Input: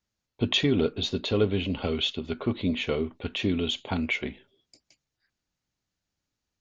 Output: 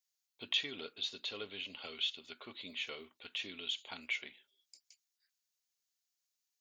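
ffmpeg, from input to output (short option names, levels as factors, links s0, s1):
-filter_complex "[0:a]acrossover=split=3900[s0][s1];[s1]acompressor=threshold=0.00398:ratio=4:attack=1:release=60[s2];[s0][s2]amix=inputs=2:normalize=0,aderivative,volume=1.26"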